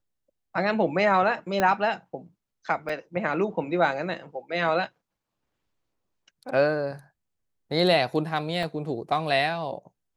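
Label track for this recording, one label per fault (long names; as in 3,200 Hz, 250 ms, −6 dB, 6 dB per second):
1.600000	1.600000	click −10 dBFS
2.890000	2.890000	drop-out 4.5 ms
8.630000	8.630000	drop-out 2.2 ms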